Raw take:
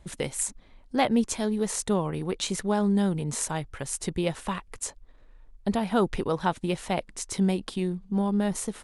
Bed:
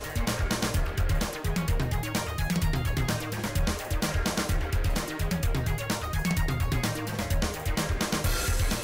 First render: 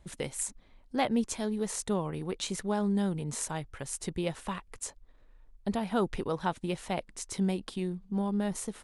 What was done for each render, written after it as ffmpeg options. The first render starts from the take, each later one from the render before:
-af "volume=-5dB"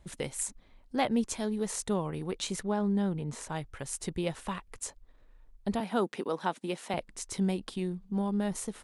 -filter_complex "[0:a]asettb=1/sr,asplit=3[a][b][c];[a]atrim=end=2.634[d];[b]atrim=start=2.63:end=3.52,asetpts=PTS-STARTPTS,afade=t=in:d=0.004:c=qsin,afade=t=out:st=0.886:d=0.004:c=qsin,lowpass=f=2.7k:p=1[e];[c]atrim=start=3.516[f];[d][e]acrossfade=d=0.004:c1=hsin:c2=qsin[g];[g][f]acrossfade=d=0.004:c1=qsin:c2=hsin,asettb=1/sr,asplit=3[h][i][j];[h]atrim=end=5.804[k];[i]atrim=start=5.8:end=6.94,asetpts=PTS-STARTPTS,afade=t=in:d=0.004:c=qsin,afade=t=out:st=1.136:d=0.004:c=qsin,highpass=f=200:w=0.5412,highpass=f=200:w=1.3066[l];[j]atrim=start=6.936[m];[k][l]acrossfade=d=0.004:c1=hsin:c2=qsin[n];[n][m]acrossfade=d=0.004:c1=qsin:c2=hsin"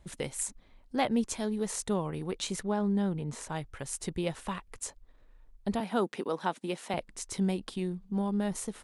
-af anull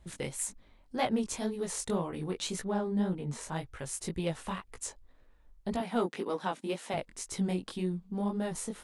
-filter_complex "[0:a]flanger=delay=16:depth=6.4:speed=1.9,asplit=2[a][b];[b]asoftclip=type=tanh:threshold=-30.5dB,volume=-8.5dB[c];[a][c]amix=inputs=2:normalize=0"

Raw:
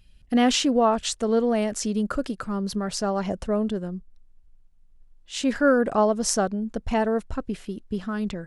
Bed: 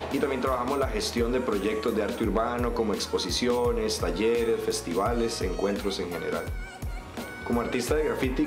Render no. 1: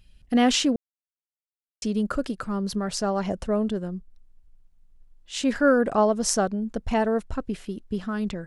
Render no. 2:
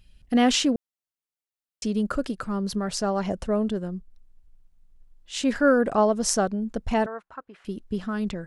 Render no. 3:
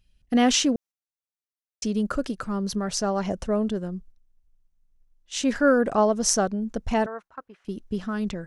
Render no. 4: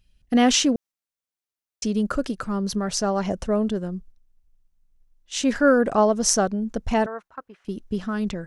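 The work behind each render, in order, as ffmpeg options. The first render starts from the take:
-filter_complex "[0:a]asplit=3[a][b][c];[a]atrim=end=0.76,asetpts=PTS-STARTPTS,afade=t=out:st=0.756:d=0.004:c=hsin[d];[b]atrim=start=0.76:end=1.82,asetpts=PTS-STARTPTS,volume=0[e];[c]atrim=start=1.82,asetpts=PTS-STARTPTS,afade=t=in:d=0.004:c=hsin[f];[d][e][f]concat=n=3:v=0:a=1"
-filter_complex "[0:a]asettb=1/sr,asplit=3[a][b][c];[a]atrim=end=7.064[d];[b]atrim=start=7.06:end=7.65,asetpts=PTS-STARTPTS,afade=t=in:d=0.004:c=qsin,afade=t=out:st=0.586:d=0.004:c=qsin,bandpass=f=1.2k:t=q:w=1.8[e];[c]atrim=start=7.646[f];[d][e]acrossfade=d=0.004:c1=hsin:c2=qsin[g];[g][f]acrossfade=d=0.004:c1=qsin:c2=hsin"
-af "agate=range=-9dB:threshold=-45dB:ratio=16:detection=peak,equalizer=f=6k:t=o:w=0.24:g=6"
-af "volume=2dB"

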